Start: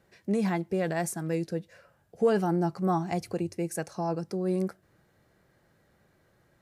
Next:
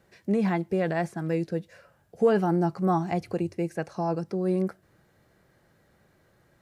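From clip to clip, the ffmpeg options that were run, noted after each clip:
ffmpeg -i in.wav -filter_complex "[0:a]acrossover=split=3700[link_01][link_02];[link_02]acompressor=threshold=-58dB:ratio=4:attack=1:release=60[link_03];[link_01][link_03]amix=inputs=2:normalize=0,volume=2.5dB" out.wav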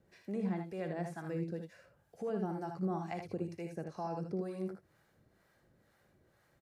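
ffmpeg -i in.wav -filter_complex "[0:a]alimiter=limit=-22.5dB:level=0:latency=1:release=275,acrossover=split=590[link_01][link_02];[link_01]aeval=exprs='val(0)*(1-0.7/2+0.7/2*cos(2*PI*2.1*n/s))':channel_layout=same[link_03];[link_02]aeval=exprs='val(0)*(1-0.7/2-0.7/2*cos(2*PI*2.1*n/s))':channel_layout=same[link_04];[link_03][link_04]amix=inputs=2:normalize=0,asplit=2[link_05][link_06];[link_06]aecho=0:1:59|78:0.316|0.447[link_07];[link_05][link_07]amix=inputs=2:normalize=0,volume=-4.5dB" out.wav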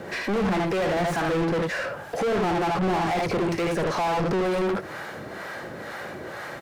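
ffmpeg -i in.wav -filter_complex "[0:a]asplit=2[link_01][link_02];[link_02]highpass=frequency=720:poles=1,volume=40dB,asoftclip=type=tanh:threshold=-25dB[link_03];[link_01][link_03]amix=inputs=2:normalize=0,lowpass=frequency=2000:poles=1,volume=-6dB,volume=7.5dB" out.wav

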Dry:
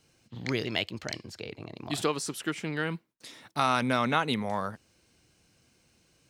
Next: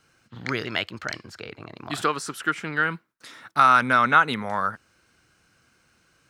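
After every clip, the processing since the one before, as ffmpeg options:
ffmpeg -i in.wav -af "equalizer=frequency=1400:width_type=o:width=0.85:gain=14" out.wav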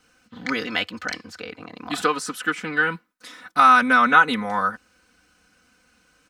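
ffmpeg -i in.wav -af "aecho=1:1:4:0.94" out.wav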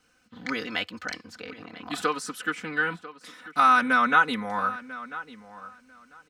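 ffmpeg -i in.wav -filter_complex "[0:a]asplit=2[link_01][link_02];[link_02]adelay=994,lowpass=frequency=3400:poles=1,volume=-16dB,asplit=2[link_03][link_04];[link_04]adelay=994,lowpass=frequency=3400:poles=1,volume=0.18[link_05];[link_01][link_03][link_05]amix=inputs=3:normalize=0,volume=-5dB" out.wav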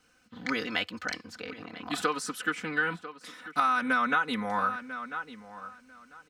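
ffmpeg -i in.wav -af "acompressor=threshold=-22dB:ratio=10" out.wav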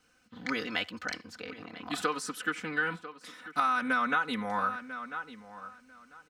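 ffmpeg -i in.wav -filter_complex "[0:a]asplit=2[link_01][link_02];[link_02]adelay=80,highpass=300,lowpass=3400,asoftclip=type=hard:threshold=-20.5dB,volume=-22dB[link_03];[link_01][link_03]amix=inputs=2:normalize=0,volume=-2dB" out.wav

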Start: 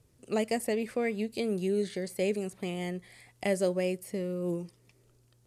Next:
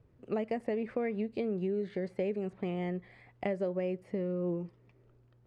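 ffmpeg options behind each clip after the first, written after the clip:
ffmpeg -i in.wav -af "lowpass=1800,acompressor=threshold=-31dB:ratio=5,volume=1.5dB" out.wav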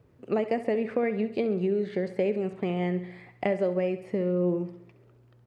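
ffmpeg -i in.wav -filter_complex "[0:a]highpass=frequency=140:poles=1,asplit=2[link_01][link_02];[link_02]aecho=0:1:67|134|201|268|335|402:0.211|0.116|0.0639|0.0352|0.0193|0.0106[link_03];[link_01][link_03]amix=inputs=2:normalize=0,volume=7dB" out.wav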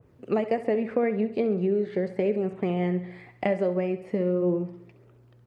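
ffmpeg -i in.wav -af "flanger=delay=0.1:depth=4.5:regen=-72:speed=0.39:shape=sinusoidal,adynamicequalizer=threshold=0.00251:dfrequency=2100:dqfactor=0.7:tfrequency=2100:tqfactor=0.7:attack=5:release=100:ratio=0.375:range=3.5:mode=cutabove:tftype=highshelf,volume=6dB" out.wav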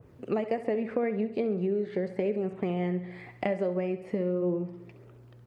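ffmpeg -i in.wav -af "acompressor=threshold=-42dB:ratio=1.5,volume=3.5dB" out.wav

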